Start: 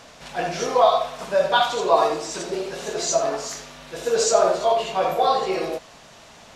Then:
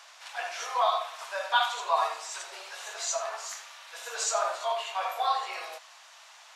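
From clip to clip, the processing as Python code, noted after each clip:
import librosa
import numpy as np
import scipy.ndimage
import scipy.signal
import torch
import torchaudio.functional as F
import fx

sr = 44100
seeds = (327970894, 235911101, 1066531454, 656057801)

y = scipy.signal.sosfilt(scipy.signal.butter(4, 850.0, 'highpass', fs=sr, output='sos'), x)
y = fx.dynamic_eq(y, sr, hz=5100.0, q=1.8, threshold_db=-43.0, ratio=4.0, max_db=-5)
y = y * 10.0 ** (-3.5 / 20.0)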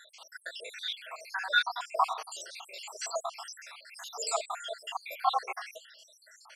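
y = fx.spec_dropout(x, sr, seeds[0], share_pct=75)
y = y * 10.0 ** (3.5 / 20.0)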